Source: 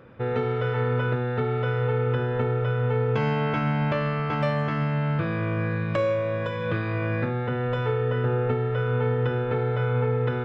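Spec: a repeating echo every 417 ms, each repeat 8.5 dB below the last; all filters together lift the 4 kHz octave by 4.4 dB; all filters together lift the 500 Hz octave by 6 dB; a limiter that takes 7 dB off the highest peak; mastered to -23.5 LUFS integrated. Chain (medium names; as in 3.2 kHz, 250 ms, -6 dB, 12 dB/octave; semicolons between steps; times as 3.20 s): peaking EQ 500 Hz +6.5 dB; peaking EQ 4 kHz +6 dB; peak limiter -17 dBFS; feedback delay 417 ms, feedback 38%, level -8.5 dB; trim +1 dB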